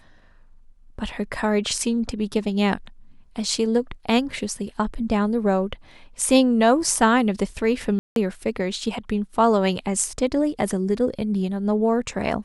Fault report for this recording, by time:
7.99–8.16 gap 0.172 s

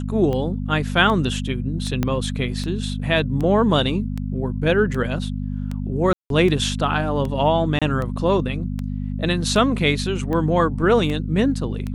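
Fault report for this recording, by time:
hum 50 Hz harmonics 5 -26 dBFS
tick 78 rpm -16 dBFS
2.03 pop -8 dBFS
6.13–6.3 gap 0.172 s
7.79–7.82 gap 26 ms

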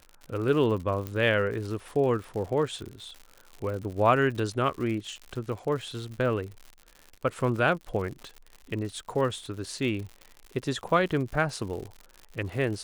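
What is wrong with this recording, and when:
crackle 110/s -36 dBFS
1.07 pop -19 dBFS

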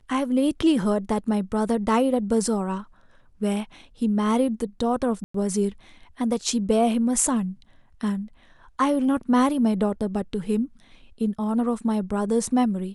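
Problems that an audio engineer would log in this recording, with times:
5.24–5.34 gap 0.104 s

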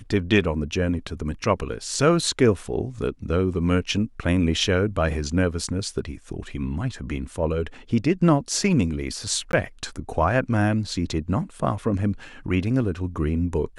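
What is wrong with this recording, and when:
9.52–9.53 gap 12 ms

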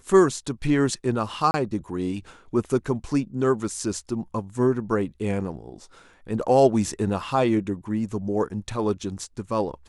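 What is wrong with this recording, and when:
1.51–1.54 gap 30 ms

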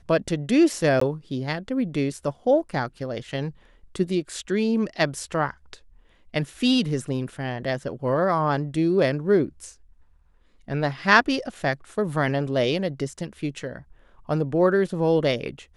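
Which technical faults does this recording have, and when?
1–1.01 gap 14 ms

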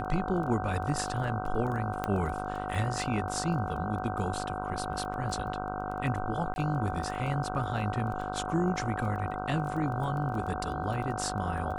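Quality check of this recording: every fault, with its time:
buzz 50 Hz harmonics 31 -37 dBFS
crackle 13/s -37 dBFS
tone 740 Hz -36 dBFS
2.04 pop -17 dBFS
6.54–6.56 gap 21 ms

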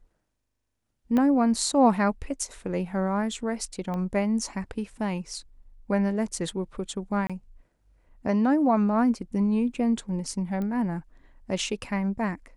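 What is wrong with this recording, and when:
1.17 pop -15 dBFS
3.94 pop -22 dBFS
7.27–7.3 gap 26 ms
10.62 pop -22 dBFS

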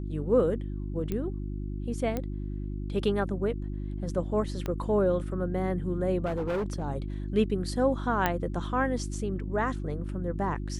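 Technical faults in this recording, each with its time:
hum 50 Hz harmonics 7 -34 dBFS
1.12 pop -19 dBFS
2.17 pop -18 dBFS
4.66 pop -19 dBFS
6.25–6.84 clipped -26.5 dBFS
8.26 pop -11 dBFS

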